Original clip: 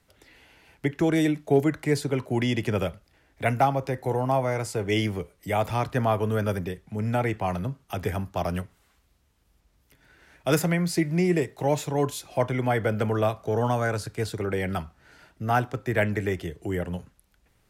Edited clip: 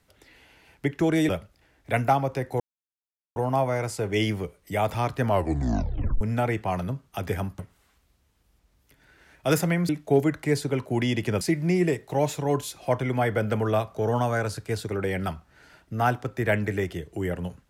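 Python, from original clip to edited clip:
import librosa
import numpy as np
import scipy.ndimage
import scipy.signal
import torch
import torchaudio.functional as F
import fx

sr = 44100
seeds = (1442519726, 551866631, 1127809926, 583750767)

y = fx.edit(x, sr, fx.move(start_s=1.29, length_s=1.52, to_s=10.9),
    fx.insert_silence(at_s=4.12, length_s=0.76),
    fx.tape_stop(start_s=6.01, length_s=0.96),
    fx.cut(start_s=8.35, length_s=0.25), tone=tone)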